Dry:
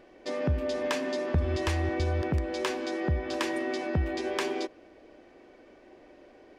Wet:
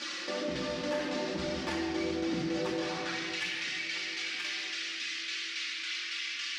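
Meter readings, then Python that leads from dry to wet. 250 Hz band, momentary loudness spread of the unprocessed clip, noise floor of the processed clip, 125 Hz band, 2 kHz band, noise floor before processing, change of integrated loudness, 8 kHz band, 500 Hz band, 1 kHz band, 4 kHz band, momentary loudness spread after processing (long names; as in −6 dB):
−2.5 dB, 3 LU, −39 dBFS, −14.5 dB, +3.0 dB, −56 dBFS, −3.0 dB, +3.0 dB, −5.0 dB, −4.5 dB, +7.0 dB, 2 LU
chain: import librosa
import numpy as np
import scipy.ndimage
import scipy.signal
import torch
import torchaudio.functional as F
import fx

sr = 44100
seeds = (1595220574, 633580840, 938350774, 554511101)

y = fx.high_shelf(x, sr, hz=4200.0, db=-8.5)
y = y + 0.53 * np.pad(y, (int(5.7 * sr / 1000.0), 0))[:len(y)]
y = np.clip(y, -10.0 ** (-21.5 / 20.0), 10.0 ** (-21.5 / 20.0))
y = fx.dmg_noise_band(y, sr, seeds[0], low_hz=1100.0, high_hz=5500.0, level_db=-39.0)
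y = fx.chorus_voices(y, sr, voices=6, hz=0.35, base_ms=13, depth_ms=3.9, mix_pct=70)
y = fx.filter_sweep_highpass(y, sr, from_hz=200.0, to_hz=2200.0, start_s=2.47, end_s=3.24, q=1.8)
y = fx.tremolo_shape(y, sr, shape='saw_down', hz=3.6, depth_pct=70)
y = fx.echo_banded(y, sr, ms=670, feedback_pct=66, hz=320.0, wet_db=-21.0)
y = fx.room_shoebox(y, sr, seeds[1], volume_m3=2700.0, walls='mixed', distance_m=2.4)
y = fx.env_flatten(y, sr, amount_pct=50)
y = y * 10.0 ** (-5.0 / 20.0)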